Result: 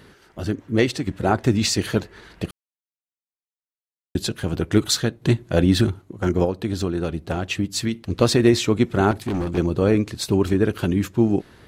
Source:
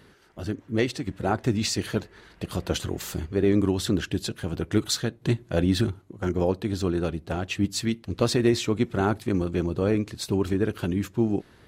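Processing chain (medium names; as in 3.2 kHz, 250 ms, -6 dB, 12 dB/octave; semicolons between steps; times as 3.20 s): 2.51–4.15 s: mute; 6.44–7.95 s: compression, threshold -25 dBFS, peak gain reduction 7.5 dB; 9.11–9.58 s: hard clipper -26.5 dBFS, distortion -20 dB; trim +5.5 dB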